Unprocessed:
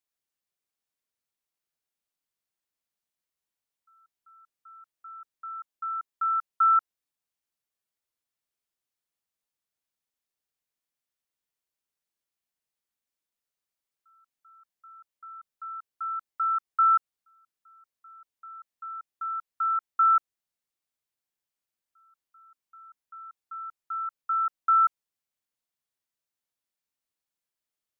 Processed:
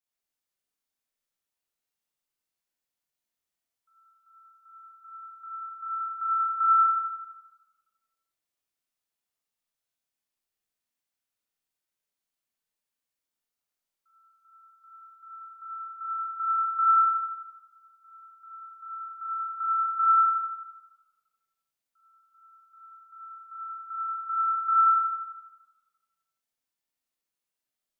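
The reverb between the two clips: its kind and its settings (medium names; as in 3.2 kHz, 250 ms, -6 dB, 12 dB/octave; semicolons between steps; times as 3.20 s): Schroeder reverb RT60 1.3 s, combs from 25 ms, DRR -6.5 dB; trim -6.5 dB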